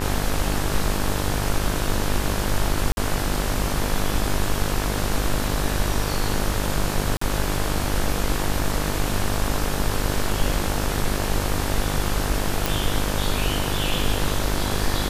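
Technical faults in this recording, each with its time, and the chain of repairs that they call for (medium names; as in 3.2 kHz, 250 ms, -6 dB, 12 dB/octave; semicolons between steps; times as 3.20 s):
buzz 50 Hz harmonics 36 -27 dBFS
2.92–2.97 s: dropout 51 ms
7.17–7.21 s: dropout 44 ms
12.66 s: pop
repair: de-click; de-hum 50 Hz, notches 36; interpolate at 2.92 s, 51 ms; interpolate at 7.17 s, 44 ms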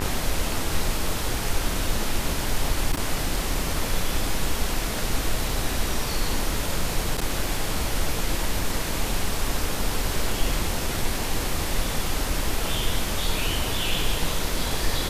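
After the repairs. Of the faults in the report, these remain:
nothing left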